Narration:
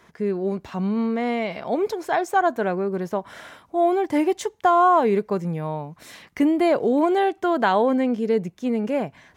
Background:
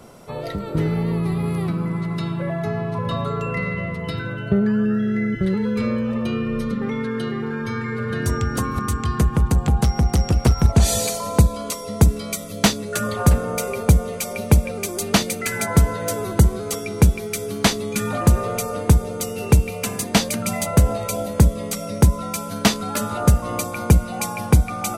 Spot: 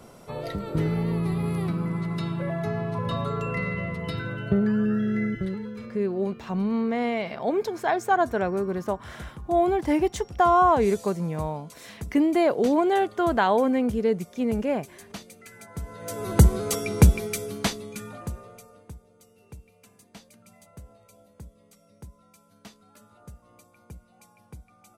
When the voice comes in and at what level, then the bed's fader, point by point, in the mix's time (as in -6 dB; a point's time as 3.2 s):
5.75 s, -2.0 dB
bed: 5.25 s -4 dB
6.07 s -22.5 dB
15.73 s -22.5 dB
16.38 s -1 dB
17.17 s -1 dB
19.03 s -30.5 dB